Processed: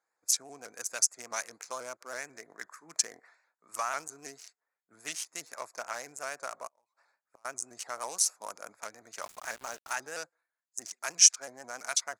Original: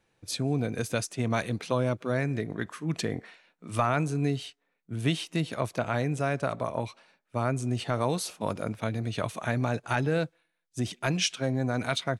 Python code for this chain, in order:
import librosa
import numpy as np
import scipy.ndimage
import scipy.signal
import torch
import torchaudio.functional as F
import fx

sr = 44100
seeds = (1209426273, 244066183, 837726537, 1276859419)

y = fx.wiener(x, sr, points=15)
y = scipy.signal.sosfilt(scipy.signal.butter(2, 1100.0, 'highpass', fs=sr, output='sos'), y)
y = fx.high_shelf_res(y, sr, hz=4700.0, db=10.0, q=3.0)
y = fx.gate_flip(y, sr, shuts_db=-41.0, range_db=-31, at=(6.67, 7.45))
y = fx.quant_dither(y, sr, seeds[0], bits=8, dither='none', at=(9.22, 9.94))
y = fx.vibrato_shape(y, sr, shape='saw_up', rate_hz=6.1, depth_cents=100.0)
y = y * librosa.db_to_amplitude(-1.0)